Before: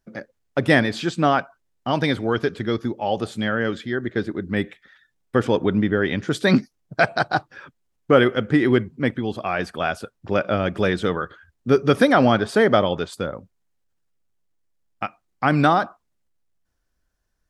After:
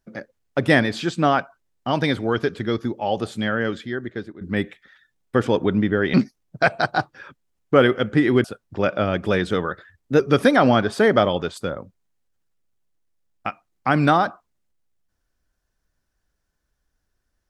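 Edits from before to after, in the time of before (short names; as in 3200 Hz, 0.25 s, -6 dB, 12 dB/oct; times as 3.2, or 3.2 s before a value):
3.44–4.41 fade out equal-power, to -15.5 dB
6.14–6.51 cut
8.81–9.96 cut
11.23–11.76 speed 109%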